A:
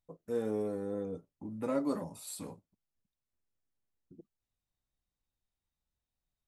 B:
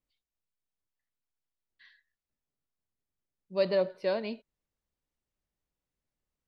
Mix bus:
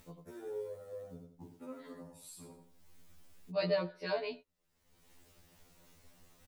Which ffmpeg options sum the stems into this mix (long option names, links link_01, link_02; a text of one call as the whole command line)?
ffmpeg -i stem1.wav -i stem2.wav -filter_complex "[0:a]acrusher=bits=7:mode=log:mix=0:aa=0.000001,volume=-7.5dB,afade=type=out:start_time=1.44:duration=0.28:silence=0.251189,asplit=3[link_01][link_02][link_03];[link_02]volume=-7.5dB[link_04];[1:a]volume=1dB[link_05];[link_03]apad=whole_len=285445[link_06];[link_05][link_06]sidechaincompress=threshold=-53dB:ratio=8:attack=16:release=794[link_07];[link_04]aecho=0:1:87|174|261|348:1|0.23|0.0529|0.0122[link_08];[link_01][link_07][link_08]amix=inputs=3:normalize=0,acompressor=mode=upward:threshold=-37dB:ratio=2.5,afftfilt=real='re*2*eq(mod(b,4),0)':imag='im*2*eq(mod(b,4),0)':win_size=2048:overlap=0.75" out.wav